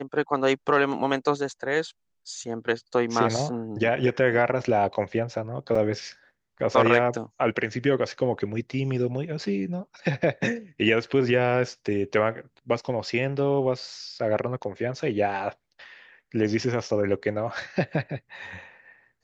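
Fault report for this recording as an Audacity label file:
5.750000	5.750000	gap 4.4 ms

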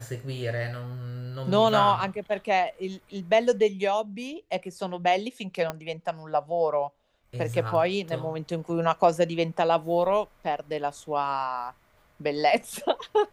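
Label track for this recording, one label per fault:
5.700000	5.700000	pop -15 dBFS

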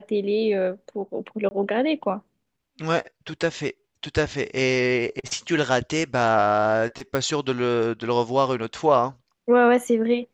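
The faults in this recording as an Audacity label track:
1.490000	1.510000	gap 20 ms
7.150000	7.150000	pop -11 dBFS

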